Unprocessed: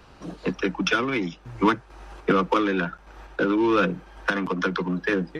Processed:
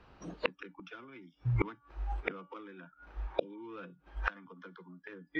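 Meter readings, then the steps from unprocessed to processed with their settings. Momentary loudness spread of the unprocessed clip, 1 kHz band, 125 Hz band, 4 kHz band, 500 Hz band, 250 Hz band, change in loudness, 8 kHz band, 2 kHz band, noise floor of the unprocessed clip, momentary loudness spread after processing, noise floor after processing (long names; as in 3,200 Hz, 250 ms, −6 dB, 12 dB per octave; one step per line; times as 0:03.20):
11 LU, −18.0 dB, −5.5 dB, −16.0 dB, −16.0 dB, −20.5 dB, −14.5 dB, can't be measured, −15.0 dB, −51 dBFS, 17 LU, −71 dBFS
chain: low-pass filter 3,500 Hz 12 dB per octave
hum removal 286.9 Hz, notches 40
noise reduction from a noise print of the clip's start 19 dB
healed spectral selection 0:03.28–0:03.57, 730–2,300 Hz both
gate with flip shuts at −24 dBFS, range −36 dB
level +10.5 dB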